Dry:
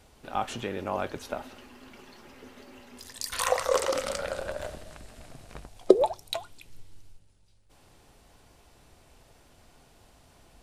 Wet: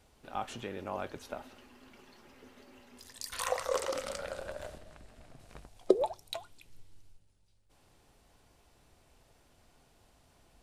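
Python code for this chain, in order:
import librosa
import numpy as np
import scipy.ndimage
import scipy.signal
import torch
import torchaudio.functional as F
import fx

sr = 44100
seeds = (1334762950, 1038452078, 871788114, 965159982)

y = fx.high_shelf(x, sr, hz=4100.0, db=-7.0, at=(4.78, 5.4))
y = y * librosa.db_to_amplitude(-7.0)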